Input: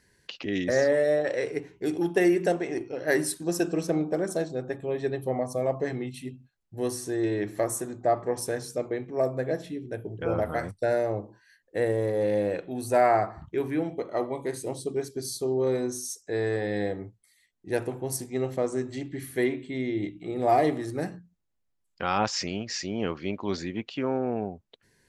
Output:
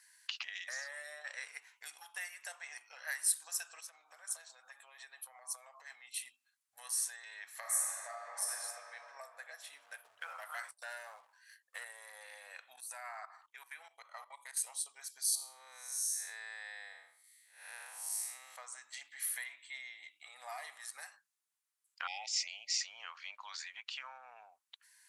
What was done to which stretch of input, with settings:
0:03.80–0:06.26: downward compressor 16 to 1, threshold −36 dBFS
0:07.59–0:08.52: thrown reverb, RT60 2.9 s, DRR −5.5 dB
0:09.73–0:11.84: leveller curve on the samples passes 1
0:12.76–0:14.57: output level in coarse steps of 16 dB
0:15.35–0:18.56: spectrum smeared in time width 241 ms
0:22.07–0:22.81: linear-phase brick-wall band-stop 890–1,900 Hz
whole clip: downward compressor 3 to 1, threshold −34 dBFS; inverse Chebyshev high-pass filter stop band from 390 Hz, stop band 50 dB; parametric band 9,700 Hz +9.5 dB 0.89 octaves

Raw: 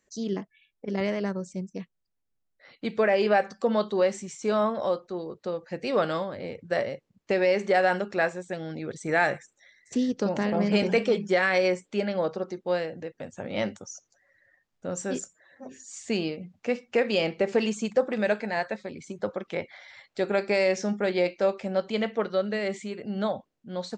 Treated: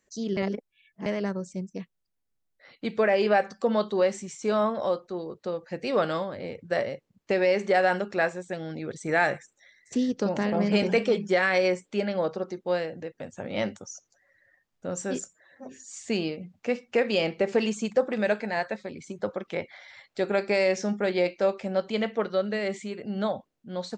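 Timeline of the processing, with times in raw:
0:00.37–0:01.06: reverse

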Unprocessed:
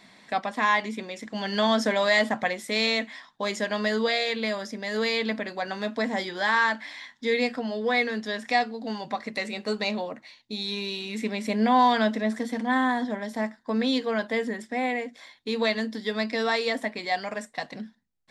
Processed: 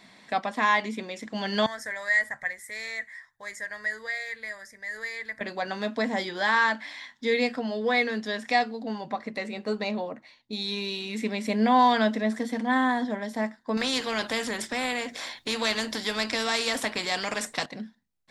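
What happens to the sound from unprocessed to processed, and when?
0:01.66–0:05.41: drawn EQ curve 110 Hz 0 dB, 220 Hz −26 dB, 550 Hz −16 dB, 800 Hz −15 dB, 1,300 Hz −12 dB, 1,900 Hz +3 dB, 2,800 Hz −23 dB, 9,200 Hz 0 dB
0:08.83–0:10.53: high-shelf EQ 2,200 Hz −8 dB
0:13.77–0:17.66: every bin compressed towards the loudest bin 2 to 1

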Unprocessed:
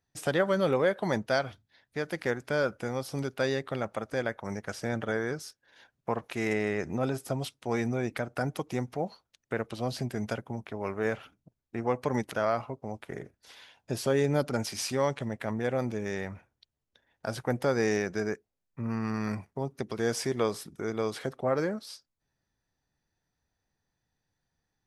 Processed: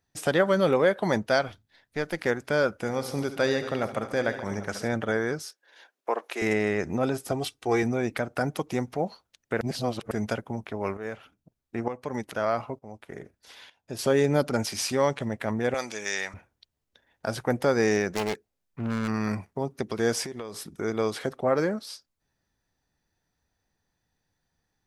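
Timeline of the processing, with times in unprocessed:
0:01.48–0:02.19: gain on one half-wave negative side −3 dB
0:02.74–0:04.88: multi-tap delay 68/78/139/229/790 ms −14.5/−16.5/−15/−16/−17 dB
0:05.46–0:06.42: high-pass filter 340 Hz 24 dB per octave
0:07.31–0:07.83: comb filter 2.6 ms
0:09.61–0:10.11: reverse
0:10.97–0:13.99: shaped tremolo saw up 1.1 Hz, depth 75%
0:15.74–0:16.34: meter weighting curve ITU-R 468
0:18.13–0:19.08: phase distortion by the signal itself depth 0.76 ms
0:20.23–0:20.66: downward compressor 8 to 1, threshold −36 dBFS
whole clip: parametric band 130 Hz −4.5 dB 0.25 octaves; level +4 dB

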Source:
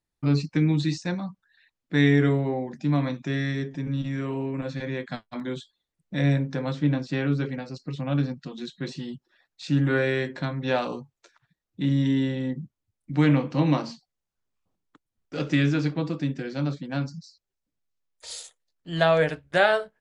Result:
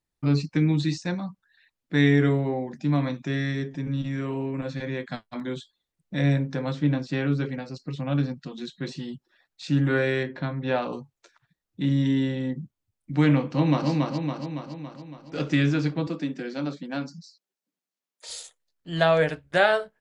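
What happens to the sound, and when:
0:10.23–0:10.93: high-frequency loss of the air 180 metres
0:13.46–0:13.89: delay throw 280 ms, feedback 60%, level −2.5 dB
0:16.07–0:18.29: Butterworth high-pass 170 Hz

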